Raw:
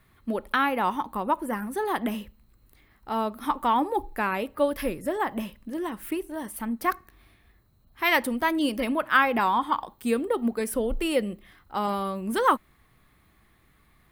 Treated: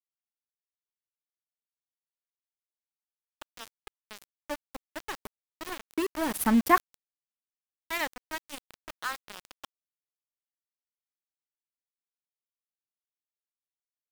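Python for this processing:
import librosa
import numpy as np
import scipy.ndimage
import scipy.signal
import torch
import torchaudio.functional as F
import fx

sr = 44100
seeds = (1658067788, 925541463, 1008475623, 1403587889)

y = fx.doppler_pass(x, sr, speed_mps=8, closest_m=1.7, pass_at_s=6.48)
y = np.where(np.abs(y) >= 10.0 ** (-38.0 / 20.0), y, 0.0)
y = F.gain(torch.from_numpy(y), 8.5).numpy()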